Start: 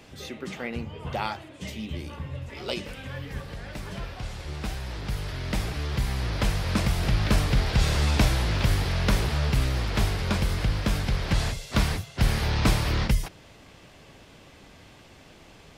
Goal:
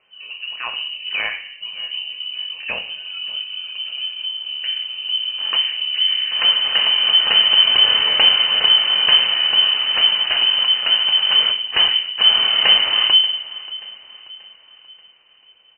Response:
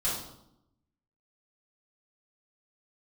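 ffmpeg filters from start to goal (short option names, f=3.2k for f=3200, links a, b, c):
-filter_complex "[0:a]afwtdn=0.0178,aecho=1:1:583|1166|1749|2332:0.112|0.0516|0.0237|0.0109,asplit=2[a][b];[1:a]atrim=start_sample=2205[c];[b][c]afir=irnorm=-1:irlink=0,volume=-10.5dB[d];[a][d]amix=inputs=2:normalize=0,crystalizer=i=2:c=0,lowpass=f=2.6k:t=q:w=0.5098,lowpass=f=2.6k:t=q:w=0.6013,lowpass=f=2.6k:t=q:w=0.9,lowpass=f=2.6k:t=q:w=2.563,afreqshift=-3100,volume=4dB"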